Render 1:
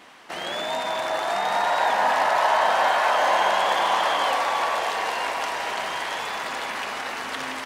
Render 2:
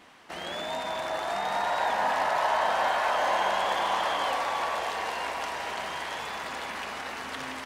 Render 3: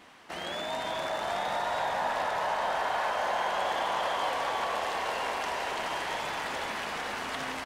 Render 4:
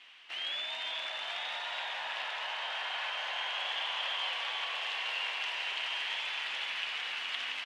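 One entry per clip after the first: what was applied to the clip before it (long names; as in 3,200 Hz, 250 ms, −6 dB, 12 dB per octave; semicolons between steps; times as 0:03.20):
low-shelf EQ 160 Hz +10 dB; level −6 dB
downward compressor 2.5 to 1, threshold −30 dBFS, peak gain reduction 6 dB; echo with shifted repeats 425 ms, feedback 60%, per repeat −52 Hz, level −6 dB
resonant band-pass 2,900 Hz, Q 3.1; level +7 dB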